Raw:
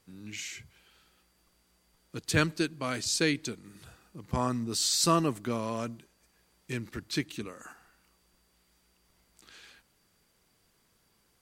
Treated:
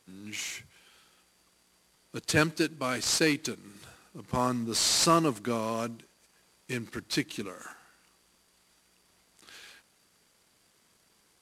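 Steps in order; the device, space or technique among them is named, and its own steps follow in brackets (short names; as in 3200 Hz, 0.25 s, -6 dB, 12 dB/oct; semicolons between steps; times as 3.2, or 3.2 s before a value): early wireless headset (HPF 180 Hz 6 dB/oct; CVSD 64 kbps); gain +3 dB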